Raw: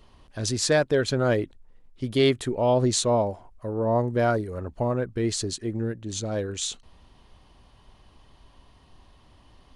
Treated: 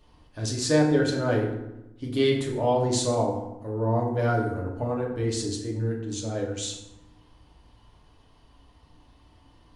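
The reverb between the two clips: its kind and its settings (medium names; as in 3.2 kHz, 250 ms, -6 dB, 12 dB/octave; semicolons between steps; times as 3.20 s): FDN reverb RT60 0.94 s, low-frequency decay 1.35×, high-frequency decay 0.6×, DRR -2 dB; trim -6 dB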